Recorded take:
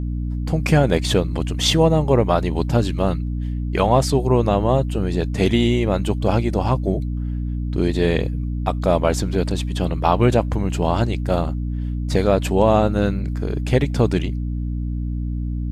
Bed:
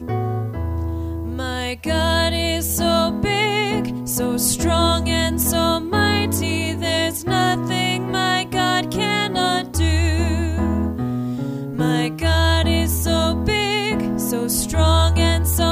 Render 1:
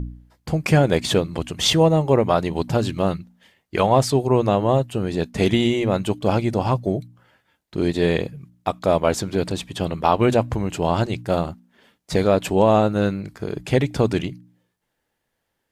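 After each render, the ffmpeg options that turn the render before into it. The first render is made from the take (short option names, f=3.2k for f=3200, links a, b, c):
-af "bandreject=f=60:t=h:w=4,bandreject=f=120:t=h:w=4,bandreject=f=180:t=h:w=4,bandreject=f=240:t=h:w=4,bandreject=f=300:t=h:w=4"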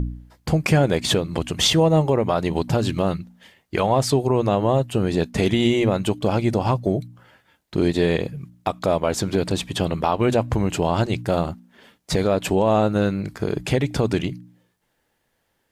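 -filter_complex "[0:a]asplit=2[a][b];[b]acompressor=threshold=-26dB:ratio=6,volume=-1.5dB[c];[a][c]amix=inputs=2:normalize=0,alimiter=limit=-8dB:level=0:latency=1:release=143"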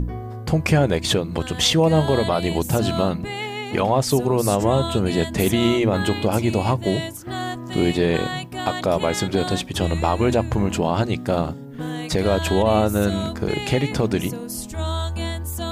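-filter_complex "[1:a]volume=-10dB[a];[0:a][a]amix=inputs=2:normalize=0"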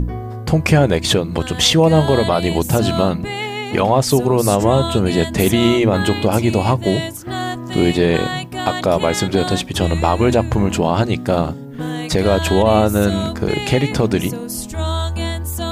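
-af "volume=4.5dB"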